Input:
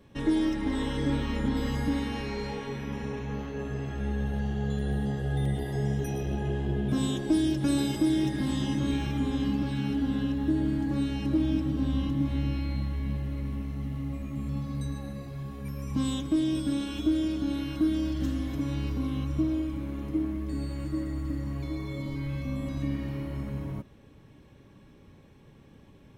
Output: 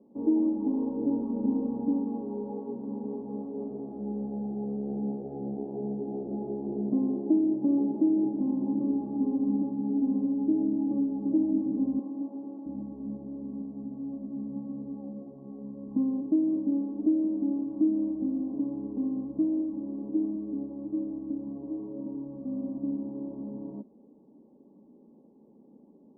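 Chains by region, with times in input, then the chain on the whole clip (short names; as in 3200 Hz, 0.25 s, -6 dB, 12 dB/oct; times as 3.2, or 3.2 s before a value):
11.99–12.66 CVSD 32 kbps + HPF 380 Hz
whole clip: elliptic band-pass 220–900 Hz, stop band 40 dB; tilt -4.5 dB/oct; gain -5.5 dB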